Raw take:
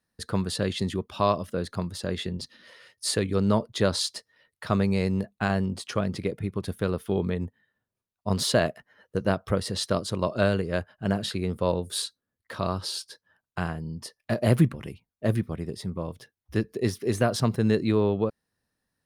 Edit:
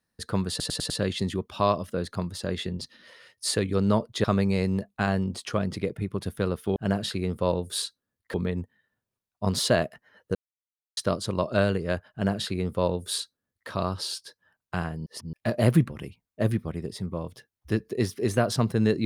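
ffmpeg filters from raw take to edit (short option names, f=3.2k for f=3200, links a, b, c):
-filter_complex "[0:a]asplit=12[a][b][c][d][e][f][g][h][i][j][k][l];[a]atrim=end=0.602[m];[b]atrim=start=0.498:end=0.602[n];[c]atrim=start=0.498:end=0.602[o];[d]atrim=start=0.498:end=0.602[p];[e]atrim=start=0.498:end=3.842[q];[f]atrim=start=4.658:end=7.182[r];[g]atrim=start=10.958:end=12.542[s];[h]atrim=start=7.178:end=9.19,asetpts=PTS-STARTPTS,afade=t=out:st=2.008:d=0.004:c=hsin[t];[i]atrim=start=9.19:end=9.81,asetpts=PTS-STARTPTS,volume=0[u];[j]atrim=start=9.81:end=13.902,asetpts=PTS-STARTPTS,afade=t=in:d=0.004:c=hsin[v];[k]atrim=start=13.898:end=14.172,asetpts=PTS-STARTPTS,areverse[w];[l]atrim=start=14.168[x];[m][n]acrossfade=d=0.004:c1=hsin:c2=hsin[y];[y][o]acrossfade=d=0.004:c1=hsin:c2=hsin[z];[z][p]acrossfade=d=0.004:c1=hsin:c2=hsin[aa];[aa][q]acrossfade=d=0.004:c1=hsin:c2=hsin[ab];[ab][r]acrossfade=d=0.004:c1=hsin:c2=hsin[ac];[ac][s]acrossfade=d=0.004:c1=hsin:c2=hsin[ad];[t][u][v]concat=n=3:v=0:a=1[ae];[ad][ae]acrossfade=d=0.004:c1=hsin:c2=hsin[af];[af][w]acrossfade=d=0.004:c1=hsin:c2=hsin[ag];[ag][x]acrossfade=d=0.004:c1=hsin:c2=hsin"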